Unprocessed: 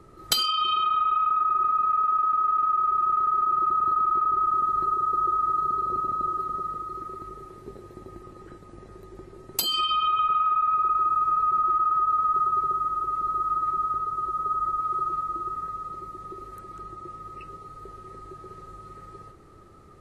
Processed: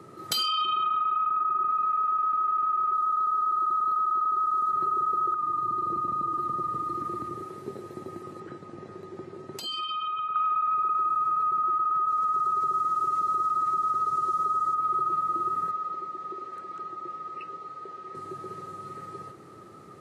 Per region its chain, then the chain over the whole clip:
0:00.65–0:01.70: head-to-tape spacing loss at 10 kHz 26 dB + notch filter 470 Hz, Q 6.2
0:02.93–0:04.71: linear-phase brick-wall band-stop 1,600–3,600 Hz + tilt shelving filter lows −5.5 dB, about 810 Hz
0:05.34–0:07.42: parametric band 72 Hz +11 dB 2.6 octaves + downward compressor 3 to 1, threshold −31 dBFS + frequency shifter −27 Hz
0:08.40–0:10.36: downward compressor 4 to 1, threshold −35 dBFS + high-frequency loss of the air 67 metres
0:12.08–0:14.75: parametric band 6,500 Hz +9.5 dB 1.5 octaves + single-tap delay 182 ms −14 dB
0:15.71–0:18.15: high-pass filter 500 Hz 6 dB per octave + high-frequency loss of the air 100 metres
whole clip: brickwall limiter −21.5 dBFS; downward compressor, threshold −28 dBFS; high-pass filter 120 Hz 24 dB per octave; level +4.5 dB

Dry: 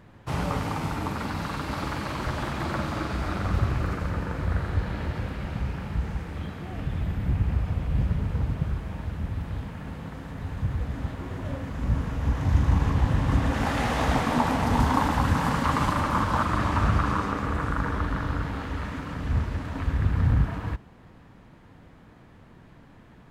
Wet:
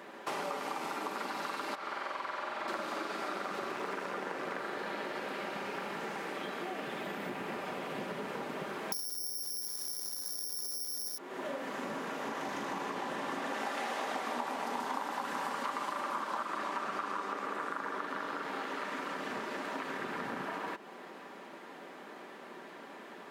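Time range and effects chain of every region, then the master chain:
0:01.75–0:02.68: low-pass filter 1,100 Hz 6 dB per octave + parametric band 260 Hz −13.5 dB 2.9 octaves + flutter between parallel walls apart 8.1 metres, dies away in 1.1 s
0:03.76–0:04.59: flutter between parallel walls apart 8.3 metres, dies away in 0.26 s + highs frequency-modulated by the lows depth 0.96 ms
0:08.92–0:11.18: low-shelf EQ 120 Hz +10 dB + tube saturation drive 33 dB, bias 0.6 + bad sample-rate conversion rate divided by 8×, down filtered, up zero stuff
whole clip: high-pass filter 310 Hz 24 dB per octave; comb filter 5.1 ms, depth 34%; downward compressor 5 to 1, threshold −44 dBFS; level +8 dB

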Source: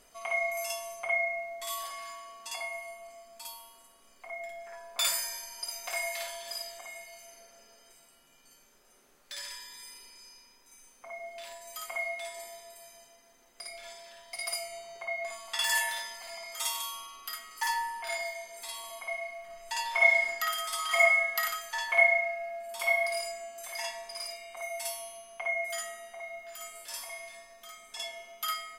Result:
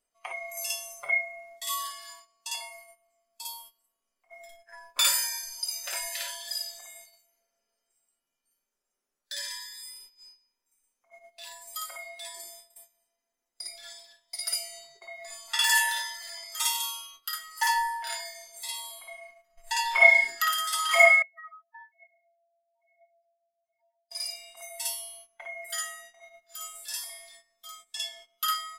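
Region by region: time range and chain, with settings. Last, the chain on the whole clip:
0:21.22–0:24.11: expanding power law on the bin magnitudes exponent 3.8 + resonant band-pass 460 Hz, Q 4.6 + comb filter 6.4 ms, depth 83%
whole clip: noise reduction from a noise print of the clip's start 14 dB; noise gate −55 dBFS, range −15 dB; parametric band 81 Hz −4 dB 1.9 octaves; level +5.5 dB

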